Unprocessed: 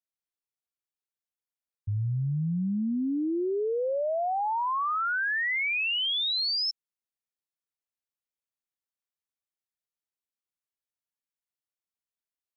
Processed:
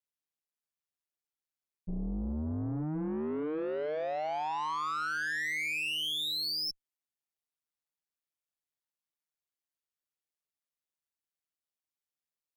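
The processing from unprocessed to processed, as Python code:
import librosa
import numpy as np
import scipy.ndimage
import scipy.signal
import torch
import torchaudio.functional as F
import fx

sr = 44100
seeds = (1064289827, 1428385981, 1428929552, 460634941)

y = x * np.sin(2.0 * np.pi * 77.0 * np.arange(len(x)) / sr)
y = 10.0 ** (-29.0 / 20.0) * np.tanh(y / 10.0 ** (-29.0 / 20.0))
y = fx.cheby_harmonics(y, sr, harmonics=(4,), levels_db=(-19,), full_scale_db=-29.5)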